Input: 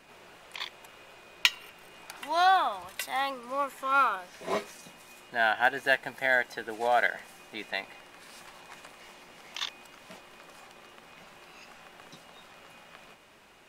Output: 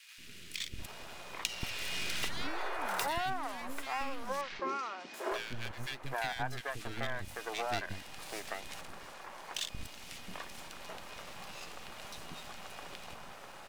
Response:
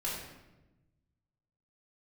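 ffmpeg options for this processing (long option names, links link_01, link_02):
-filter_complex "[0:a]asettb=1/sr,asplit=3[link_01][link_02][link_03];[link_01]atrim=end=8.814[link_04];[link_02]atrim=start=8.81:end=9.72,asetpts=PTS-STARTPTS,afade=type=in:duration=0.004:curve=qsin,afade=type=out:start_time=0.906:duration=0.004:curve=qsin,agate=range=-6dB:threshold=-43dB:ratio=16:detection=peak[link_05];[link_03]atrim=start=9.716[link_06];[link_04][link_05]acrossfade=duration=0.004:curve1=hsin:curve2=qsin[link_07];[link_07][link_06]acrossfade=duration=0.004:curve1=qsin:curve2=hsin,acompressor=threshold=-37dB:ratio=12,asplit=3[link_08][link_09][link_10];[link_08]afade=type=out:start_time=1.48:duration=0.02[link_11];[link_09]asplit=2[link_12][link_13];[link_13]highpass=frequency=720:poles=1,volume=25dB,asoftclip=type=tanh:threshold=-27dB[link_14];[link_12][link_14]amix=inputs=2:normalize=0,lowpass=frequency=2800:poles=1,volume=-6dB,afade=type=in:start_time=1.48:duration=0.02,afade=type=out:start_time=2.28:duration=0.02[link_15];[link_10]afade=type=in:start_time=2.28:duration=0.02[link_16];[link_11][link_15][link_16]amix=inputs=3:normalize=0,aeval=exprs='max(val(0),0)':channel_layout=same,asettb=1/sr,asplit=3[link_17][link_18][link_19];[link_17]atrim=end=4.414[link_20];[link_18]atrim=start=4.41:end=5.14,asetpts=PTS-STARTPTS,afade=type=in:duration=0.004:curve=qsin,afade=type=out:start_time=0.726:duration=0.004:curve=qsin,highpass=frequency=240:width=0.5412,highpass=frequency=240:width=1.3066,equalizer=frequency=360:width_type=q:width=4:gain=8,equalizer=frequency=1600:width_type=q:width=4:gain=5,equalizer=frequency=3700:width_type=q:width=4:gain=-4,lowpass=frequency=5100:width=0.5412,lowpass=frequency=5100:width=1.3066[link_21];[link_19]atrim=start=5.136[link_22];[link_20][link_21]acrossfade=duration=0.004:curve1=hsin:curve2=qsin[link_23];[link_23][link_22]acrossfade=duration=0.004:curve1=qsin:curve2=hsin,acrossover=split=350|1900[link_24][link_25][link_26];[link_24]adelay=180[link_27];[link_25]adelay=790[link_28];[link_27][link_28][link_26]amix=inputs=3:normalize=0,volume=9.5dB"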